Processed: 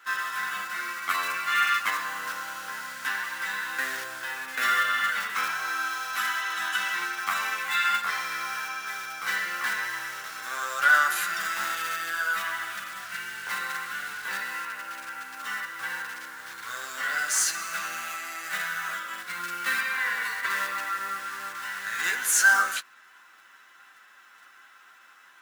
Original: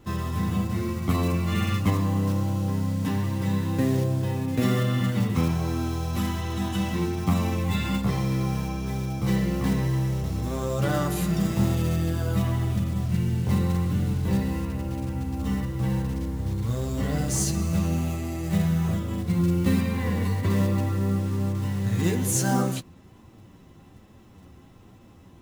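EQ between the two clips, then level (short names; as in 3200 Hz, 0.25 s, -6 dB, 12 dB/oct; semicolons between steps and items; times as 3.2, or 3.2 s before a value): resonant high-pass 1500 Hz, resonance Q 6.8; +3.5 dB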